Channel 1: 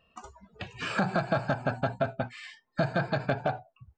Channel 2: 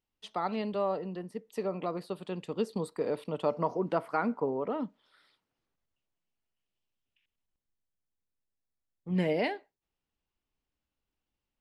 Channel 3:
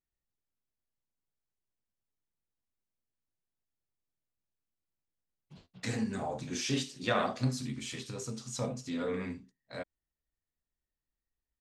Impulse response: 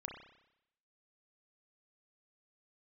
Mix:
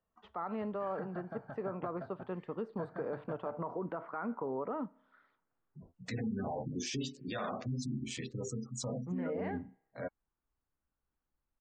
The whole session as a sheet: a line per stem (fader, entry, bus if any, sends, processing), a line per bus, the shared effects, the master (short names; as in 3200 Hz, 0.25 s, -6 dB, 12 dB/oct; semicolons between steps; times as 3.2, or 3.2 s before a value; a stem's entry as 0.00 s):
-18.5 dB, 0.00 s, no bus, no send, polynomial smoothing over 41 samples; notches 60/120 Hz
-4.0 dB, 0.00 s, bus A, send -19.5 dB, limiter -25 dBFS, peak gain reduction 9.5 dB; synth low-pass 1400 Hz, resonance Q 1.8
+2.0 dB, 0.25 s, bus A, no send, Wiener smoothing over 15 samples; spectral gate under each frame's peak -20 dB strong
bus A: 0.0 dB, limiter -29.5 dBFS, peak gain reduction 13.5 dB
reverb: on, RT60 0.80 s, pre-delay 30 ms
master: dry